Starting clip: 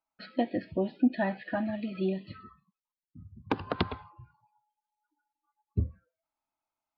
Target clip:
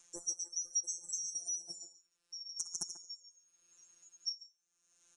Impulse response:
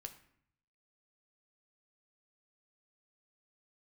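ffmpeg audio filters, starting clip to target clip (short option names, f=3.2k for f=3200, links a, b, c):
-filter_complex "[0:a]afftfilt=real='real(if(lt(b,736),b+184*(1-2*mod(floor(b/184),2)),b),0)':imag='imag(if(lt(b,736),b+184*(1-2*mod(floor(b/184),2)),b),0)':win_size=2048:overlap=0.75,acompressor=threshold=-35dB:ratio=3,asetrate=59535,aresample=44100,afftfilt=real='hypot(re,im)*cos(PI*b)':imag='0':win_size=1024:overlap=0.75,asplit=2[a][b];[b]adelay=140,highpass=300,lowpass=3.4k,asoftclip=type=hard:threshold=-27.5dB,volume=-9dB[c];[a][c]amix=inputs=2:normalize=0,acompressor=mode=upward:threshold=-41dB:ratio=2.5,aresample=22050,aresample=44100,volume=1dB"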